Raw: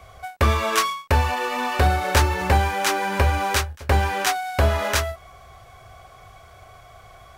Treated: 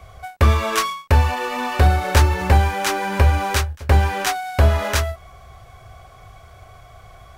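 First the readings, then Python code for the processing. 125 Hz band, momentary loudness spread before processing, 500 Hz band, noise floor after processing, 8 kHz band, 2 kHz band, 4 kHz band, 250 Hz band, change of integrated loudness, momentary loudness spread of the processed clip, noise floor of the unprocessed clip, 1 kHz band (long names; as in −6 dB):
+5.5 dB, 5 LU, +1.0 dB, −45 dBFS, 0.0 dB, 0.0 dB, 0.0 dB, +2.5 dB, +2.5 dB, 6 LU, −48 dBFS, +0.5 dB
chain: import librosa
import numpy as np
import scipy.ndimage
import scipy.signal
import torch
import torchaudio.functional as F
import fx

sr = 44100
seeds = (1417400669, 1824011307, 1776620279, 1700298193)

y = fx.low_shelf(x, sr, hz=200.0, db=6.5)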